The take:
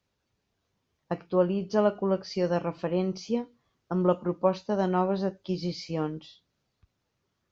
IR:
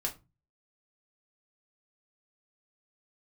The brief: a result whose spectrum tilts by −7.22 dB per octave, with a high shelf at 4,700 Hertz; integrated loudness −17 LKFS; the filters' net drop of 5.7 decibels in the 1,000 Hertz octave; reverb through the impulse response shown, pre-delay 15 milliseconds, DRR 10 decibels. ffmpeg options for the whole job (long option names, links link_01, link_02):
-filter_complex "[0:a]equalizer=frequency=1000:width_type=o:gain=-7.5,highshelf=frequency=4700:gain=-4,asplit=2[link_01][link_02];[1:a]atrim=start_sample=2205,adelay=15[link_03];[link_02][link_03]afir=irnorm=-1:irlink=0,volume=-12.5dB[link_04];[link_01][link_04]amix=inputs=2:normalize=0,volume=12.5dB"